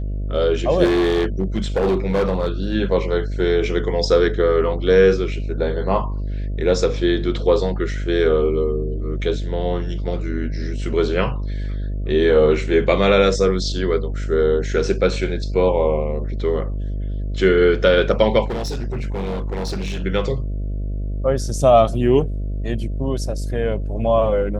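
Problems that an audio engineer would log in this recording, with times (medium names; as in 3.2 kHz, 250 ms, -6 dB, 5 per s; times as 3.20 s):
buzz 50 Hz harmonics 13 -24 dBFS
0.84–2.74 s: clipped -14 dBFS
18.46–20.04 s: clipped -21 dBFS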